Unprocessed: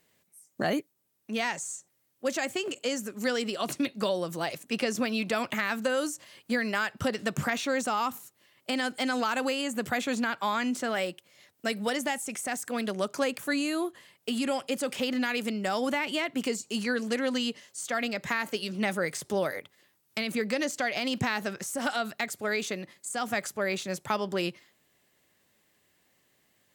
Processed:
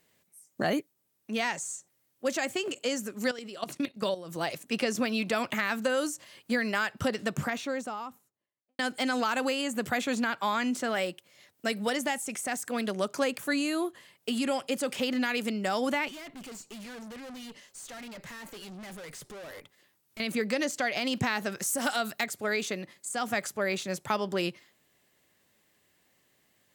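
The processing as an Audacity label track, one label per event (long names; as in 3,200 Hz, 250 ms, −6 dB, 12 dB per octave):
3.310000	4.360000	output level in coarse steps of 14 dB
7.010000	8.790000	fade out and dull
16.080000	20.200000	tube saturation drive 42 dB, bias 0.35
21.520000	22.240000	high-shelf EQ 6,800 Hz +10 dB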